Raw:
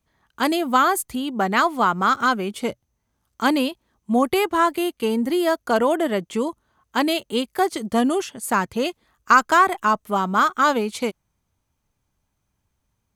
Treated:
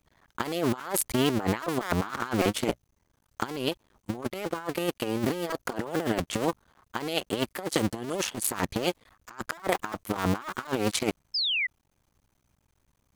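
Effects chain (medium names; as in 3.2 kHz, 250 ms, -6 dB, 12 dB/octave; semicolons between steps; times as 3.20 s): cycle switcher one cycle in 2, muted; compressor with a negative ratio -28 dBFS, ratio -0.5; painted sound fall, 11.34–11.67 s, 1.9–5.3 kHz -27 dBFS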